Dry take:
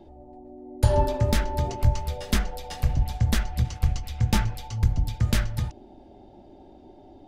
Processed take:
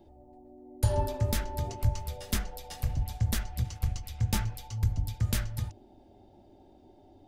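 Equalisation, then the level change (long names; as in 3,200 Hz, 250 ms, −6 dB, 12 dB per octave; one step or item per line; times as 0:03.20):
parametric band 98 Hz +8 dB 0.27 octaves
high-shelf EQ 7,500 Hz +12 dB
−8.0 dB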